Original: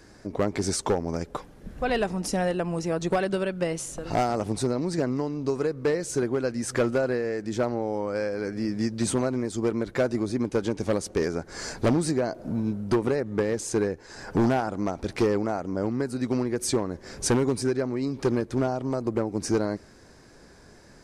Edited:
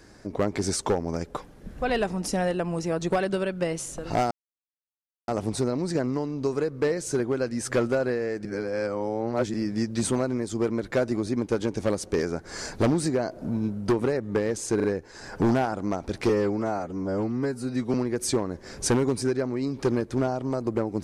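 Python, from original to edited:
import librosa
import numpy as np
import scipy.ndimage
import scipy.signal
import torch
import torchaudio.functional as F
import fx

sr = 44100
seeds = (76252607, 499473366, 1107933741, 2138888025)

y = fx.edit(x, sr, fx.insert_silence(at_s=4.31, length_s=0.97),
    fx.reverse_span(start_s=7.48, length_s=1.09),
    fx.stutter(start_s=13.79, slice_s=0.04, count=3),
    fx.stretch_span(start_s=15.24, length_s=1.1, factor=1.5), tone=tone)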